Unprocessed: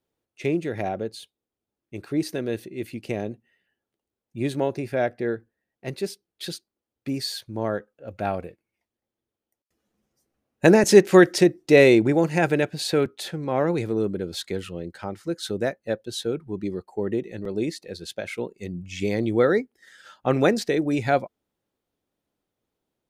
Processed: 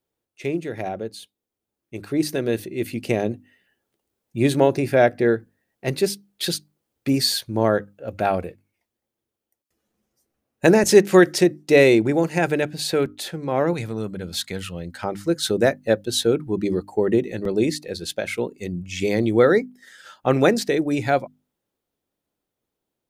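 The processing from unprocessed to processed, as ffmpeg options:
-filter_complex "[0:a]asettb=1/sr,asplit=3[a][b][c];[a]atrim=end=13.734[d];[b]atrim=start=13.73:end=15.04,asetpts=PTS-STARTPTS,afade=t=in:d=0.004:c=qsin,afade=t=out:st=1.306:d=0.004:c=qsin,equalizer=f=370:w=1.5:g=-11.5[e];[c]atrim=start=15.036[f];[d][e]acrossfade=d=0.004:c1=hsin:c2=qsin[g];[g][f]acrossfade=d=0.004:c1=qsin:c2=hsin,highshelf=f=8.8k:g=5.5,bandreject=f=50:t=h:w=6,bandreject=f=100:t=h:w=6,bandreject=f=150:t=h:w=6,bandreject=f=200:t=h:w=6,bandreject=f=250:t=h:w=6,bandreject=f=300:t=h:w=6,dynaudnorm=f=150:g=31:m=11.5dB,volume=-1dB"

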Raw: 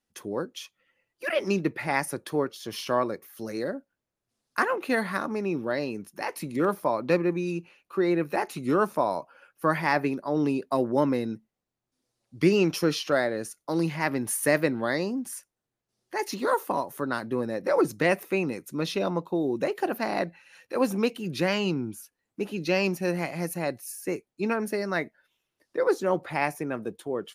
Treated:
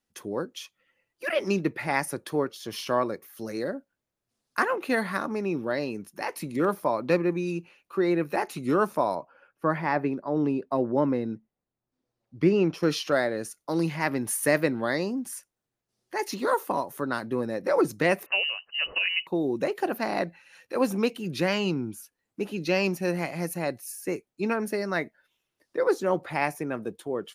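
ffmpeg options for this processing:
-filter_complex "[0:a]asettb=1/sr,asplit=3[a][b][c];[a]atrim=end=9.154[d];[b]atrim=start=9.15:end=12.83,asetpts=PTS-STARTPTS,afade=t=in:d=0.004:c=qsin,afade=t=out:st=3.676:d=0.004:c=qsin,lowpass=f=1.4k:p=1[e];[c]atrim=start=12.826[f];[d][e]acrossfade=d=0.004:c1=hsin:c2=qsin[g];[g][f]acrossfade=d=0.004:c1=qsin:c2=hsin,asettb=1/sr,asplit=3[h][i][j];[h]atrim=end=18.264[k];[i]atrim=start=18.26:end=19.27,asetpts=PTS-STARTPTS,afade=t=in:d=0.004:c=qsin,afade=t=out:st=1.006:d=0.004:c=qsin,lowpass=f=2.6k:t=q:w=0.5098,lowpass=f=2.6k:t=q:w=0.6013,lowpass=f=2.6k:t=q:w=0.9,lowpass=f=2.6k:t=q:w=2.563,afreqshift=-3100[l];[j]atrim=start=19.266[m];[k][l]acrossfade=d=0.004:c1=hsin:c2=qsin[n];[n][m]acrossfade=d=0.004:c1=qsin:c2=hsin"

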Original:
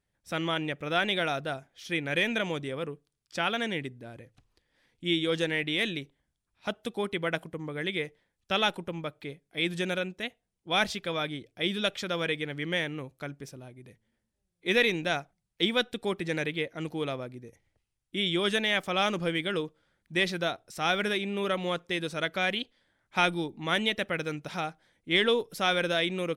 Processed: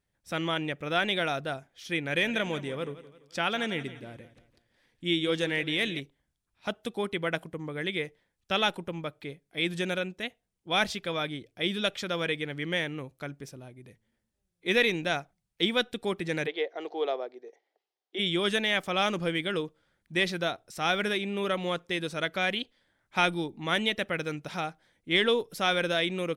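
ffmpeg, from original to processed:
-filter_complex "[0:a]asettb=1/sr,asplit=3[a][b][c];[a]atrim=end=2.054[d];[b]atrim=start=2.05:end=6,asetpts=PTS-STARTPTS,afade=t=in:d=0.004:c=qsin,afade=t=out:st=3.946:d=0.004:c=qsin,aecho=1:1:170|340|510|680:0.178|0.0694|0.027|0.0105,atrim=end_sample=174195[e];[c]atrim=start=5.996[f];[d][e]acrossfade=d=0.004:c1=hsin:c2=qsin[g];[g][f]acrossfade=d=0.004:c1=qsin:c2=hsin,asplit=3[h][i][j];[h]afade=t=out:st=16.46:d=0.02[k];[i]highpass=f=380:w=0.5412,highpass=f=380:w=1.3066,equalizer=f=410:t=q:w=4:g=8,equalizer=f=740:t=q:w=4:g=10,equalizer=f=1.4k:t=q:w=4:g=-3,equalizer=f=2.5k:t=q:w=4:g=-6,lowpass=f=5.2k:w=0.5412,lowpass=f=5.2k:w=1.3066,afade=t=in:st=16.46:d=0.02,afade=t=out:st=18.18:d=0.02[l];[j]afade=t=in:st=18.18:d=0.02[m];[k][l][m]amix=inputs=3:normalize=0"

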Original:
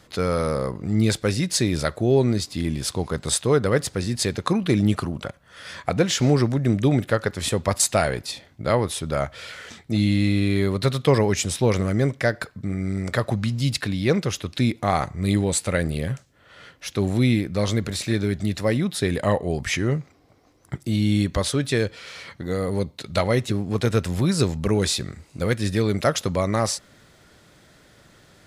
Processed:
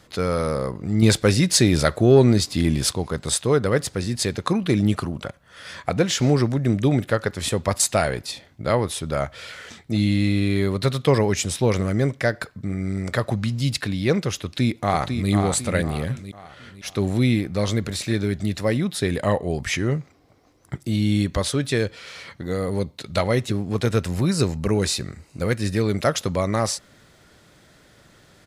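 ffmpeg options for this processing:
-filter_complex "[0:a]asettb=1/sr,asplit=3[a][b][c];[a]atrim=end=1.024[d];[b]atrim=start=1.02:end=2.93,asetpts=PTS-STARTPTS,afade=t=in:d=0.004:c=qsin,afade=t=out:st=1.906:d=0.004:c=qsin,acontrast=32[e];[c]atrim=start=2.926[f];[d][e]acrossfade=d=0.004:c1=hsin:c2=qsin[g];[g][f]acrossfade=d=0.004:c1=qsin:c2=hsin,asplit=2[h][i];[i]afade=t=in:st=14.38:d=0.01,afade=t=out:st=15.31:d=0.01,aecho=0:1:500|1000|1500|2000|2500:0.501187|0.200475|0.08019|0.032076|0.0128304[j];[h][j]amix=inputs=2:normalize=0,asettb=1/sr,asplit=3[k][l][m];[k]atrim=end=24.084[n];[l]atrim=start=24.08:end=25.89,asetpts=PTS-STARTPTS,afade=t=in:d=0.004:c=qsin,afade=t=out:st=1.806:d=0.004:c=qsin,bandreject=f=3.4k:w=8.3[o];[m]atrim=start=25.886[p];[n][o]acrossfade=d=0.004:c1=hsin:c2=qsin[q];[q][p]acrossfade=d=0.004:c1=qsin:c2=hsin"

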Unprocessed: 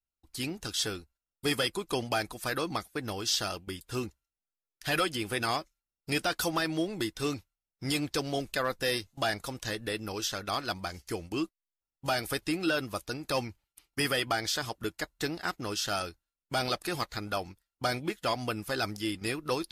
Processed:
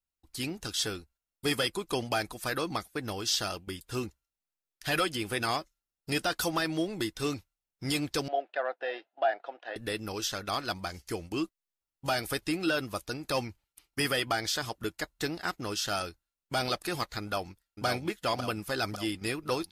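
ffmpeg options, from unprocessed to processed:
-filter_complex "[0:a]asettb=1/sr,asplit=3[a][b][c];[a]atrim=end=5.604[d];[b]atrim=start=5.6:end=6.35,asetpts=PTS-STARTPTS,afade=t=in:d=0.004:c=qsin,afade=t=out:st=0.746:d=0.004:c=qsin,bandreject=f=2.3k:w=12[e];[c]atrim=start=6.346[f];[d][e]acrossfade=d=0.004:c1=hsin:c2=qsin[g];[g][f]acrossfade=d=0.004:c1=qsin:c2=hsin,asettb=1/sr,asplit=3[h][i][j];[h]atrim=end=8.284[k];[i]atrim=start=8.28:end=9.76,asetpts=PTS-STARTPTS,afade=t=in:d=0.004:c=qsin,afade=t=out:st=1.476:d=0.004:c=qsin,highpass=f=430:w=0.5412,highpass=f=430:w=1.3066,equalizer=f=450:t=q:w=4:g=-5,equalizer=f=710:t=q:w=4:g=9,equalizer=f=1.1k:t=q:w=4:g=-10,equalizer=f=2.2k:t=q:w=4:g=-9,lowpass=f=2.5k:w=0.5412,lowpass=f=2.5k:w=1.3066[l];[j]atrim=start=9.756[m];[k][l]acrossfade=d=0.004:c1=hsin:c2=qsin[n];[n][m]acrossfade=d=0.004:c1=qsin:c2=hsin,asplit=2[o][p];[p]afade=t=in:st=17.22:d=0.01,afade=t=out:st=17.85:d=0.01,aecho=0:1:550|1100|1650|2200|2750|3300|3850|4400|4950:0.595662|0.357397|0.214438|0.128663|0.0771978|0.0463187|0.0277912|0.0166747|0.0100048[q];[o][q]amix=inputs=2:normalize=0"

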